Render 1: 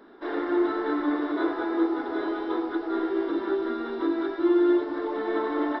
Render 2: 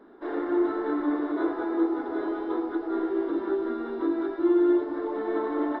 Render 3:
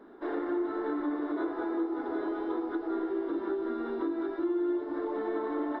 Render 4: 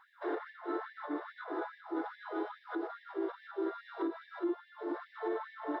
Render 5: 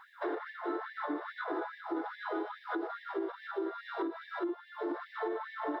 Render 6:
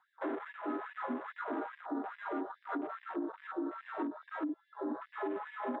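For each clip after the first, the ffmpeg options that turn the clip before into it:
-af "highshelf=f=2000:g=-12"
-af "acompressor=threshold=0.0316:ratio=3"
-af "alimiter=level_in=1.5:limit=0.0631:level=0:latency=1:release=62,volume=0.668,afftfilt=real='re*gte(b*sr/1024,260*pow(1700/260,0.5+0.5*sin(2*PI*2.4*pts/sr)))':imag='im*gte(b*sr/1024,260*pow(1700/260,0.5+0.5*sin(2*PI*2.4*pts/sr)))':win_size=1024:overlap=0.75,volume=1.19"
-af "acompressor=threshold=0.01:ratio=6,volume=2.37"
-af "afwtdn=0.00631,afreqshift=-47,volume=0.841"

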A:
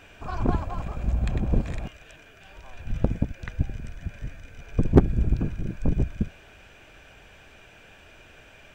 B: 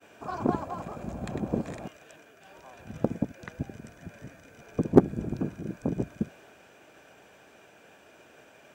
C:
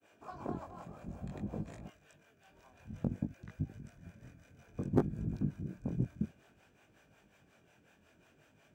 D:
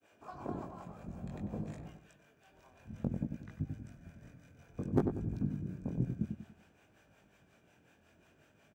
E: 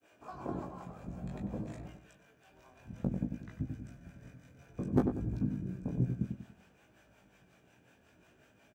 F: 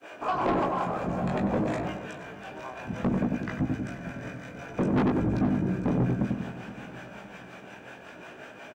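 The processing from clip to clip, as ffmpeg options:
-af "agate=range=0.0224:threshold=0.00398:ratio=3:detection=peak,highpass=220,equalizer=f=2700:t=o:w=1.8:g=-9,volume=1.33"
-filter_complex "[0:a]flanger=delay=19:depth=4.8:speed=0.57,acrossover=split=430[s0][s1];[s0]aeval=exprs='val(0)*(1-0.7/2+0.7/2*cos(2*PI*5.5*n/s))':c=same[s2];[s1]aeval=exprs='val(0)*(1-0.7/2-0.7/2*cos(2*PI*5.5*n/s))':c=same[s3];[s2][s3]amix=inputs=2:normalize=0,asubboost=boost=4:cutoff=220,volume=0.531"
-filter_complex "[0:a]asplit=2[s0][s1];[s1]adelay=95,lowpass=f=1100:p=1,volume=0.531,asplit=2[s2][s3];[s3]adelay=95,lowpass=f=1100:p=1,volume=0.39,asplit=2[s4][s5];[s5]adelay=95,lowpass=f=1100:p=1,volume=0.39,asplit=2[s6][s7];[s7]adelay=95,lowpass=f=1100:p=1,volume=0.39,asplit=2[s8][s9];[s9]adelay=95,lowpass=f=1100:p=1,volume=0.39[s10];[s0][s2][s4][s6][s8][s10]amix=inputs=6:normalize=0,volume=0.891"
-filter_complex "[0:a]asplit=2[s0][s1];[s1]adelay=16,volume=0.473[s2];[s0][s2]amix=inputs=2:normalize=0,volume=1.12"
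-filter_complex "[0:a]asplit=2[s0][s1];[s1]highpass=f=720:p=1,volume=20,asoftclip=type=tanh:threshold=0.237[s2];[s0][s2]amix=inputs=2:normalize=0,lowpass=f=1500:p=1,volume=0.501,asoftclip=type=tanh:threshold=0.0501,aecho=1:1:471|942|1413|1884:0.168|0.0789|0.0371|0.0174,volume=1.88"

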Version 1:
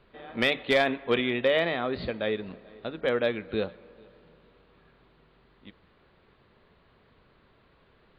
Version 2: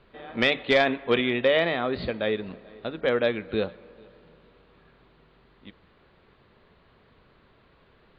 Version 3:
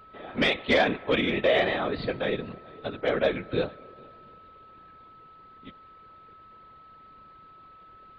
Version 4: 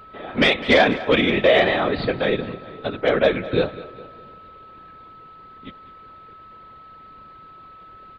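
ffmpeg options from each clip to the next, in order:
-af "lowpass=f=6700:w=0.5412,lowpass=f=6700:w=1.3066,volume=1.33"
-af "acontrast=31,afftfilt=real='hypot(re,im)*cos(2*PI*random(0))':imag='hypot(re,im)*sin(2*PI*random(1))':win_size=512:overlap=0.75,aeval=exprs='val(0)+0.00355*sin(2*PI*1300*n/s)':c=same"
-af "aecho=1:1:204|408|612:0.141|0.0551|0.0215,volume=2.24"

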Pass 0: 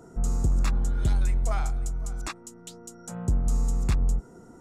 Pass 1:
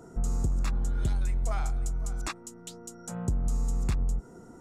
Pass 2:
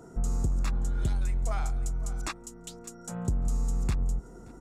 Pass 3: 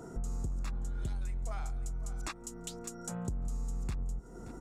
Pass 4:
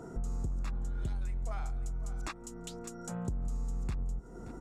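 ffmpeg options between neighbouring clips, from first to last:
-af "acompressor=threshold=0.0631:ratio=6"
-af "aecho=1:1:577|1154:0.0631|0.0133"
-af "acompressor=threshold=0.00891:ratio=2.5,volume=1.33"
-af "highshelf=f=4600:g=-6.5,volume=1.12"

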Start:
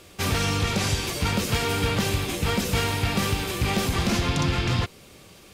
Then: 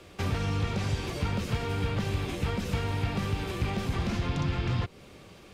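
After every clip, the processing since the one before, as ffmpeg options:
-filter_complex "[0:a]lowpass=f=2600:p=1,acrossover=split=150|920[s0][s1][s2];[s0]acompressor=threshold=0.0447:ratio=4[s3];[s1]acompressor=threshold=0.0178:ratio=4[s4];[s2]acompressor=threshold=0.0112:ratio=4[s5];[s3][s4][s5]amix=inputs=3:normalize=0"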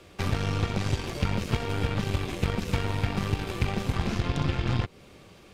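-af "aeval=exprs='0.168*(cos(1*acos(clip(val(0)/0.168,-1,1)))-cos(1*PI/2))+0.0335*(cos(3*acos(clip(val(0)/0.168,-1,1)))-cos(3*PI/2))+0.00841*(cos(4*acos(clip(val(0)/0.168,-1,1)))-cos(4*PI/2))+0.00299*(cos(8*acos(clip(val(0)/0.168,-1,1)))-cos(8*PI/2))':c=same,volume=2.24"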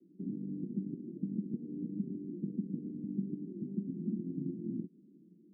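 -af "asuperpass=centerf=240:order=8:qfactor=1.4,volume=0.75"

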